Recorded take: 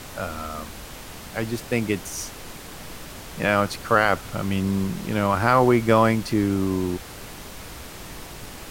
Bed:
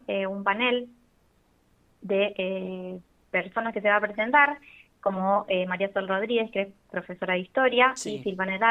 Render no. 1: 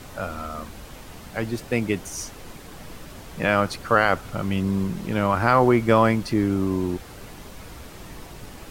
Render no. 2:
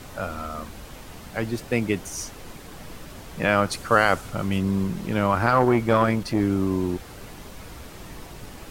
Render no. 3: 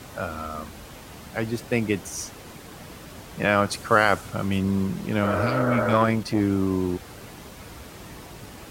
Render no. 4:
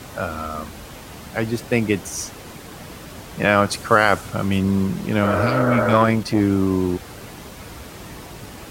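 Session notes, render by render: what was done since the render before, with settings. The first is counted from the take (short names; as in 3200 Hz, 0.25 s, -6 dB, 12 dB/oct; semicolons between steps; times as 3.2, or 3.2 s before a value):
denoiser 6 dB, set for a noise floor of -40 dBFS
3.71–4.58 dynamic EQ 8600 Hz, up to +8 dB, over -46 dBFS, Q 0.77; 5.46–6.41 core saturation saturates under 510 Hz
HPF 56 Hz; 5.27–5.9 spectral repair 310–2000 Hz before
gain +4.5 dB; limiter -1 dBFS, peak gain reduction 2.5 dB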